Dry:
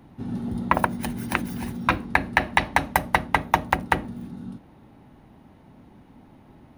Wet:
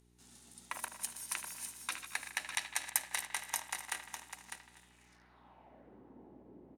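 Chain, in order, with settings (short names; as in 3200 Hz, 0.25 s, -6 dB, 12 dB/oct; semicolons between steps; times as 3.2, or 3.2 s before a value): regenerating reverse delay 0.123 s, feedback 52%, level -12 dB; high shelf 4900 Hz +6.5 dB; in parallel at -12 dB: requantised 6-bit, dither none; on the sum: band-pass sweep 7700 Hz -> 390 Hz, 4.4–6; echo 0.602 s -7.5 dB; buzz 60 Hz, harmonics 7, -68 dBFS -4 dB/oct; analogue delay 77 ms, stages 2048, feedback 70%, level -12 dB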